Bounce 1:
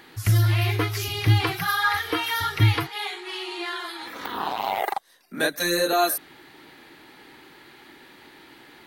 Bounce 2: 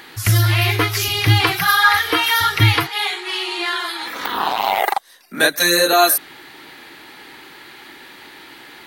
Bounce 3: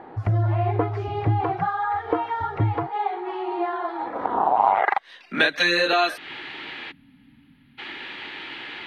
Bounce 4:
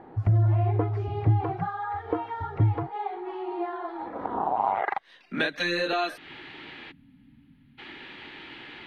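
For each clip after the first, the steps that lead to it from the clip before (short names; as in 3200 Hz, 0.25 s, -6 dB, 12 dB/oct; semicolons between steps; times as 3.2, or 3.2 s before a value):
tilt shelf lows -3.5 dB, about 660 Hz; gain +7 dB
spectral gain 6.91–7.78, 290–9800 Hz -29 dB; compressor 4:1, threshold -20 dBFS, peak gain reduction 10.5 dB; low-pass sweep 730 Hz -> 2900 Hz, 4.53–5.1; gain +1 dB
low shelf 340 Hz +10 dB; gain -8.5 dB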